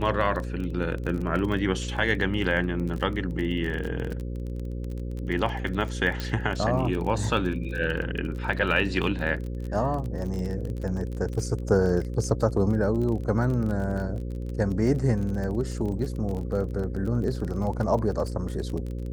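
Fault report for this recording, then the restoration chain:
buzz 60 Hz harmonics 9 -32 dBFS
crackle 27/s -31 dBFS
6.2 pop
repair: de-click; de-hum 60 Hz, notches 9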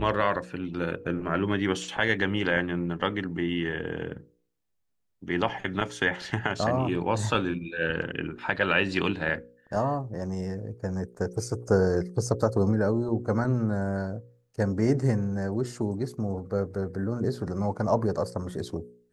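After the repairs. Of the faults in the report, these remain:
none

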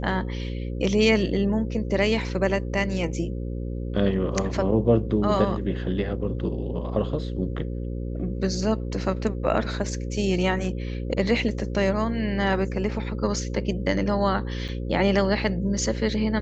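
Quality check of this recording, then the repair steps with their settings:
buzz 60 Hz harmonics 9 -30 dBFS
14.68–14.69 gap 7.2 ms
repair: de-hum 60 Hz, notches 9; interpolate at 14.68, 7.2 ms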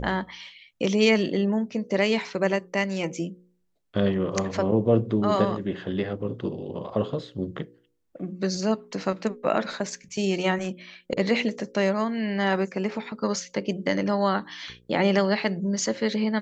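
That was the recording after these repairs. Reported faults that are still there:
none

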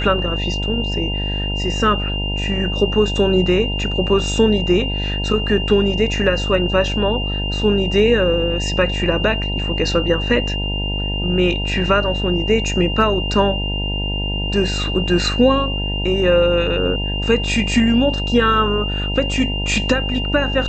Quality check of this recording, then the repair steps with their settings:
buzz 50 Hz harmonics 19 -23 dBFS
tone 2800 Hz -24 dBFS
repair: notch 2800 Hz, Q 30; de-hum 50 Hz, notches 19

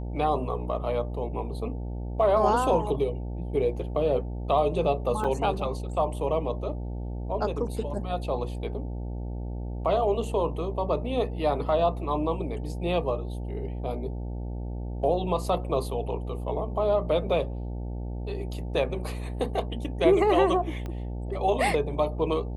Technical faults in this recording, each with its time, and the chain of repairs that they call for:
buzz 60 Hz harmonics 15 -33 dBFS
5.24–5.25 gap 5.6 ms
20.86 pop -23 dBFS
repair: de-click; de-hum 60 Hz, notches 15; interpolate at 5.24, 5.6 ms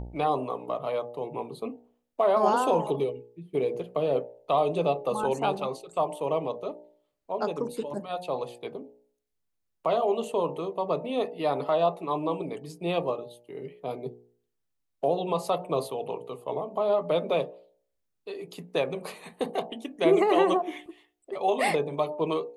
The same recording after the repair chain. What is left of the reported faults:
20.86 pop

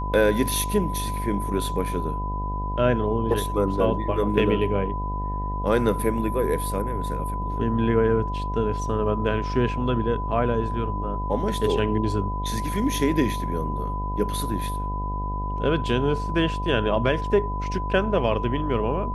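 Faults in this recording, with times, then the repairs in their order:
buzz 50 Hz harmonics 19 -29 dBFS
tone 1000 Hz -30 dBFS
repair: notch 1000 Hz, Q 30; de-hum 50 Hz, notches 19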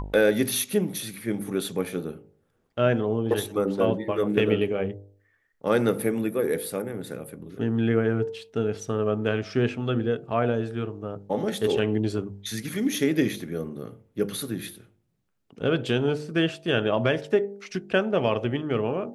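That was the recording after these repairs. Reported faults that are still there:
none

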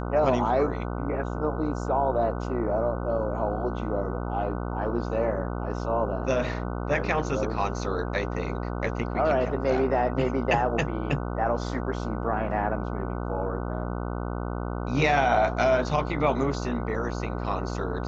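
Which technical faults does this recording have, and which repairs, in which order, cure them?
buzz 60 Hz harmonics 25 -31 dBFS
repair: de-hum 60 Hz, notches 25

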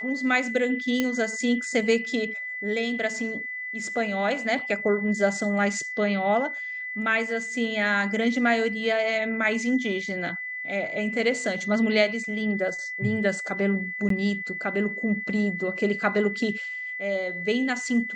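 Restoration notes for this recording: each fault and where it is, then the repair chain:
tone 2000 Hz -31 dBFS
1 pop -10 dBFS
14.09–14.1 gap 13 ms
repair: de-click; notch 2000 Hz, Q 30; interpolate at 14.09, 13 ms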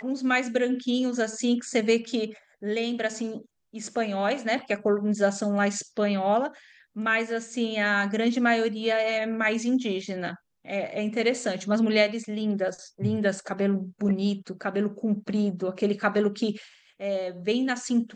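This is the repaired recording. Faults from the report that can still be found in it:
none

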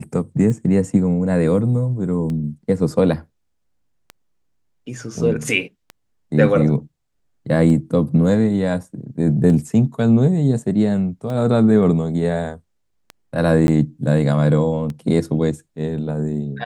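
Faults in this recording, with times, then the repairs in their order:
tick 33 1/3 rpm -17 dBFS
13.67–13.68 gap 11 ms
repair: de-click; interpolate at 13.67, 11 ms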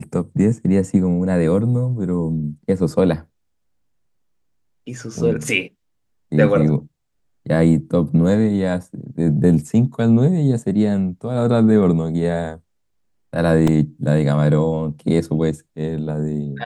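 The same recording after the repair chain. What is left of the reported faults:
none

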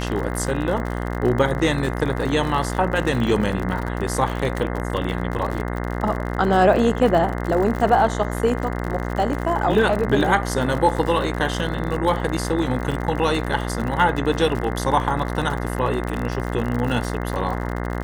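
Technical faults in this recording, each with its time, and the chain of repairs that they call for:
buzz 60 Hz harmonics 35 -26 dBFS
crackle 58/s -26 dBFS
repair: de-click; de-hum 60 Hz, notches 35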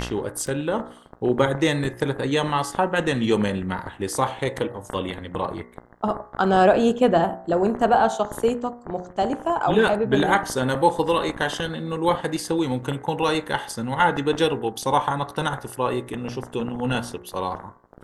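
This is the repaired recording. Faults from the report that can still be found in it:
none

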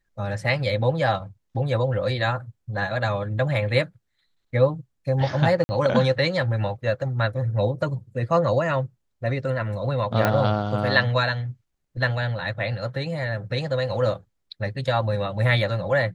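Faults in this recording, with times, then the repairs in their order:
5.64–5.69 gap 50 ms
10.25 pop -7 dBFS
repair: de-click; interpolate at 5.64, 50 ms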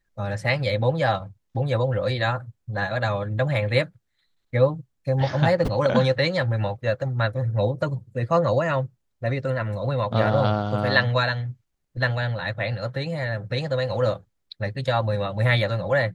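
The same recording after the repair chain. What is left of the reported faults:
none

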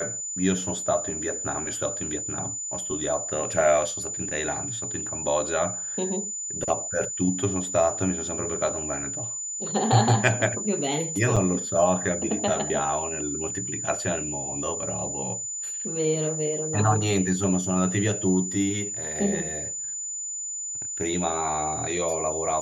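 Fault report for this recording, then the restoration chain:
tone 7000 Hz -30 dBFS
11.36–11.37 gap 5.9 ms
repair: notch 7000 Hz, Q 30; interpolate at 11.36, 5.9 ms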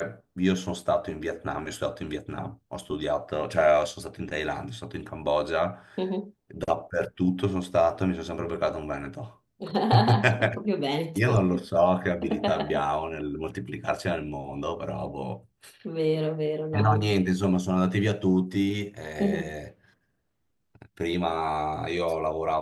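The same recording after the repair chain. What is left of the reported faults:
none

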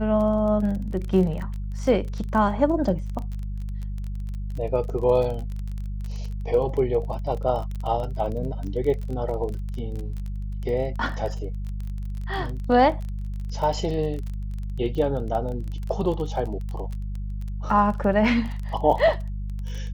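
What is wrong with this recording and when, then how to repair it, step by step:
crackle 24/s -30 dBFS
hum 50 Hz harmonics 4 -30 dBFS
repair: de-click; de-hum 50 Hz, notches 4

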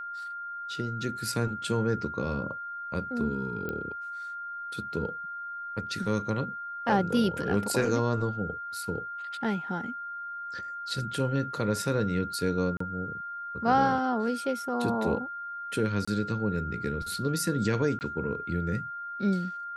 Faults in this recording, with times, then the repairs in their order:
tone 1400 Hz -35 dBFS
3.69 pop -21 dBFS
12.77–12.8 gap 34 ms
16.05–16.07 gap 25 ms
17.99–18.01 gap 19 ms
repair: de-click; notch 1400 Hz, Q 30; interpolate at 12.77, 34 ms; interpolate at 16.05, 25 ms; interpolate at 17.99, 19 ms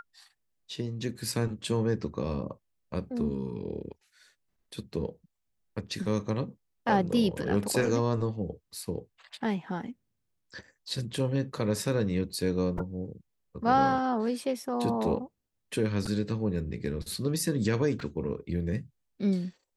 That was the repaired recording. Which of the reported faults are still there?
none

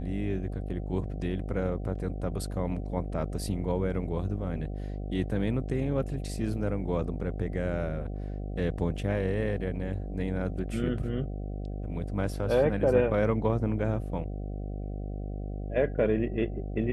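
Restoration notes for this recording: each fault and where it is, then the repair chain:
buzz 50 Hz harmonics 15 -35 dBFS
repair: de-hum 50 Hz, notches 15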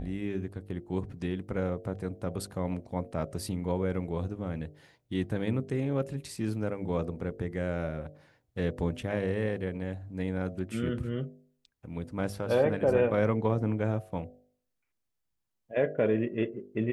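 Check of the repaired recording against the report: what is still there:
none

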